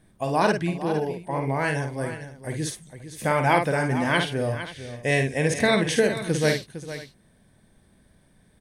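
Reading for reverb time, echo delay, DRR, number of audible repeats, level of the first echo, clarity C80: none, 52 ms, none, 3, -6.0 dB, none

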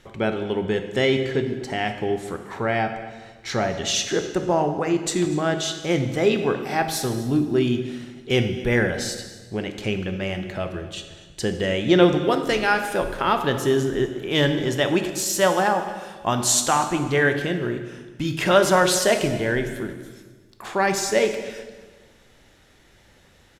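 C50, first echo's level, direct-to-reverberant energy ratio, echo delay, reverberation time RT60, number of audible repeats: 8.0 dB, -20.0 dB, 6.5 dB, 0.245 s, 1.4 s, 1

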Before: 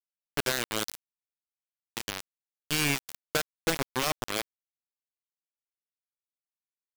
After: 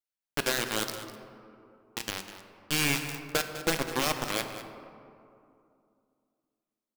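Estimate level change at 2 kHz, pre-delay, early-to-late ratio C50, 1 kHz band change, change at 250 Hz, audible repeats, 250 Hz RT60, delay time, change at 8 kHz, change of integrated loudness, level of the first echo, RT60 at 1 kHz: +1.0 dB, 4 ms, 7.5 dB, +1.0 dB, +1.5 dB, 1, 3.1 s, 0.201 s, +0.5 dB, +0.5 dB, -13.5 dB, 2.5 s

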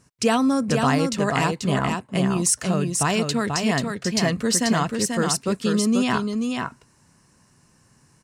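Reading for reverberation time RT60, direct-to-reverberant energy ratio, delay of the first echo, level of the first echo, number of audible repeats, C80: none, none, 0.487 s, -4.5 dB, 1, none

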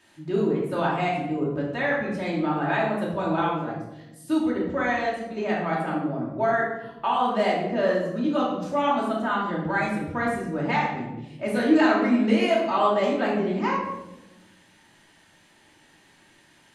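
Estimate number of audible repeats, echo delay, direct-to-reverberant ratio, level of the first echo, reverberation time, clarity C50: none, none, -5.0 dB, none, 1.0 s, 2.5 dB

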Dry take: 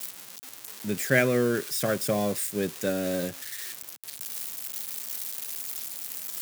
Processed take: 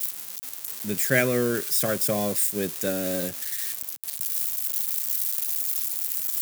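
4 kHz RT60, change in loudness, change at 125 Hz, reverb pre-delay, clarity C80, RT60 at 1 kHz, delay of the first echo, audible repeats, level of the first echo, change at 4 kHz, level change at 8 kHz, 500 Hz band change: none, +4.5 dB, 0.0 dB, none, none, none, none, none, none, +2.5 dB, +6.0 dB, 0.0 dB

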